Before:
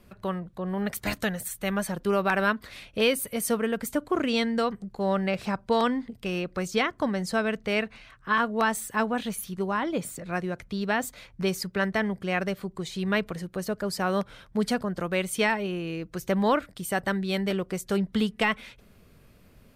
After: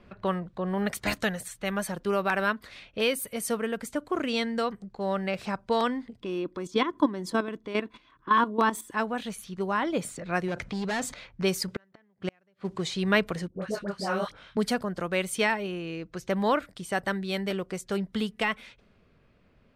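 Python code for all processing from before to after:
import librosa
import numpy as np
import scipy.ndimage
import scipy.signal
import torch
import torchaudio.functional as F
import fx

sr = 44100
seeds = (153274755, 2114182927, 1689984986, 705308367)

y = fx.chain(x, sr, fx.peak_eq(hz=220.0, db=2.0, octaves=1.1),
    fx.level_steps(step_db=12),
    fx.small_body(hz=(320.0, 1000.0, 3400.0), ring_ms=30, db=16), at=(6.21, 8.92))
y = fx.chain(y, sr, fx.highpass(hz=51.0, slope=12),
    fx.overload_stage(gain_db=28.5),
    fx.env_flatten(amount_pct=50), at=(10.48, 11.14))
y = fx.chain(y, sr, fx.law_mismatch(coded='mu'),
    fx.highpass(hz=69.0, slope=12),
    fx.gate_flip(shuts_db=-20.0, range_db=-40), at=(11.68, 12.94))
y = fx.chain(y, sr, fx.dispersion(late='highs', ms=84.0, hz=900.0),
    fx.detune_double(cents=40), at=(13.48, 14.57))
y = fx.env_lowpass(y, sr, base_hz=3000.0, full_db=-24.0)
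y = fx.low_shelf(y, sr, hz=220.0, db=-4.5)
y = fx.rider(y, sr, range_db=10, speed_s=2.0)
y = F.gain(torch.from_numpy(y), -2.0).numpy()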